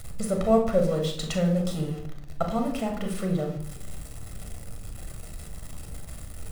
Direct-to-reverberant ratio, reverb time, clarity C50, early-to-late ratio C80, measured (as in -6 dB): 3.0 dB, 0.65 s, 7.5 dB, 11.5 dB